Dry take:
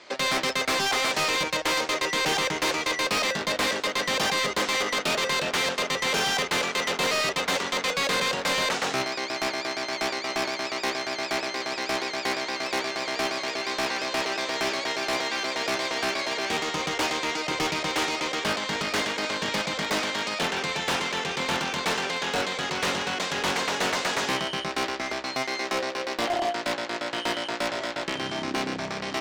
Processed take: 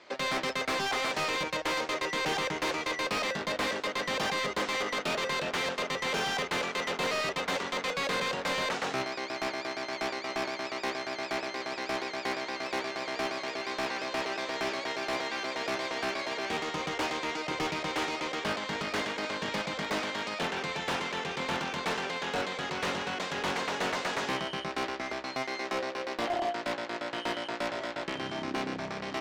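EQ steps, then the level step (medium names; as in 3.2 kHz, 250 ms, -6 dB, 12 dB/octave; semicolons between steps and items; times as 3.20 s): treble shelf 3.9 kHz -8 dB; -4.0 dB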